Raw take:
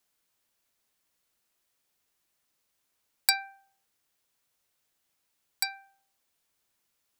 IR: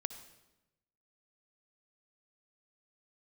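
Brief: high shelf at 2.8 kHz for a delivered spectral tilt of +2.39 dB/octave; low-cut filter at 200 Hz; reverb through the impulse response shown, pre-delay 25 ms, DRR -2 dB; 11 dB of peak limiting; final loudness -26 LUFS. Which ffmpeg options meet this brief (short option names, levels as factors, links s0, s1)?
-filter_complex "[0:a]highpass=200,highshelf=f=2800:g=6,alimiter=limit=0.355:level=0:latency=1,asplit=2[s0][s1];[1:a]atrim=start_sample=2205,adelay=25[s2];[s1][s2]afir=irnorm=-1:irlink=0,volume=1.33[s3];[s0][s3]amix=inputs=2:normalize=0,volume=1.33"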